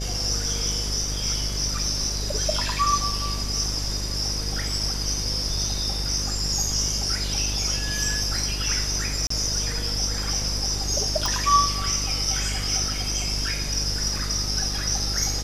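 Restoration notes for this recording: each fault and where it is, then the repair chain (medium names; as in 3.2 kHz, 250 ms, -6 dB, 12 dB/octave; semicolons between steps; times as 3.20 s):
buzz 50 Hz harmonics 13 -30 dBFS
9.27–9.30 s: dropout 34 ms
11.26 s: pop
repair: de-click; de-hum 50 Hz, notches 13; interpolate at 9.27 s, 34 ms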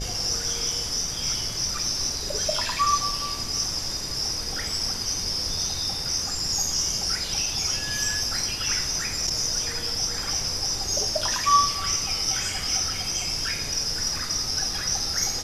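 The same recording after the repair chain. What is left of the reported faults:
nothing left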